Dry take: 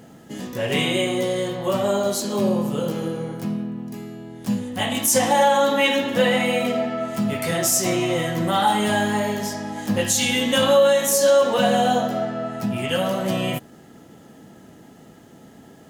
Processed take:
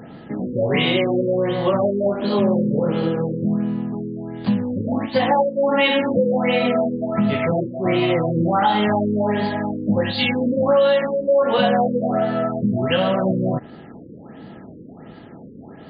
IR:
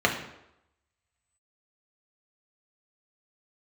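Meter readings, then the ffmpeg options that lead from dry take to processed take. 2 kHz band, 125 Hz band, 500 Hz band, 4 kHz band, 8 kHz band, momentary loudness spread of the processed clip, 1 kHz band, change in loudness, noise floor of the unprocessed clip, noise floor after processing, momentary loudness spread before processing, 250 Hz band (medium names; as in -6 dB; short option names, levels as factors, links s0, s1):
-0.5 dB, +4.0 dB, +1.5 dB, -2.0 dB, under -40 dB, 7 LU, 0.0 dB, +1.0 dB, -47 dBFS, -41 dBFS, 12 LU, +4.0 dB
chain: -af "acompressor=threshold=0.0708:ratio=2.5,afftfilt=real='re*lt(b*sr/1024,530*pow(4900/530,0.5+0.5*sin(2*PI*1.4*pts/sr)))':imag='im*lt(b*sr/1024,530*pow(4900/530,0.5+0.5*sin(2*PI*1.4*pts/sr)))':win_size=1024:overlap=0.75,volume=2.24"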